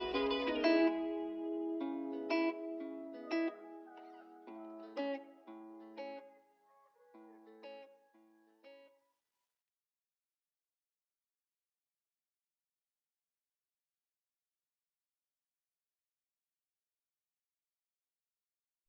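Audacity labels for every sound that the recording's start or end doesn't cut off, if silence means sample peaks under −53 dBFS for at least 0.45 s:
7.150000	7.850000	sound
8.650000	8.830000	sound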